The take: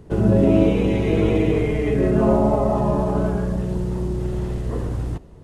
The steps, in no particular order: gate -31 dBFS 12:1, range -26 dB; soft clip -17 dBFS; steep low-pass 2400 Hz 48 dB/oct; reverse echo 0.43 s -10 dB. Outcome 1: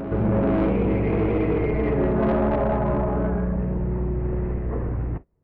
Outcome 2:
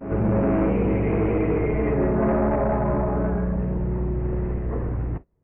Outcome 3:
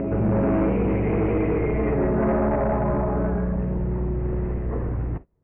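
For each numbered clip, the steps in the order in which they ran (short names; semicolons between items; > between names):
steep low-pass > soft clip > gate > reverse echo; soft clip > steep low-pass > reverse echo > gate; gate > reverse echo > soft clip > steep low-pass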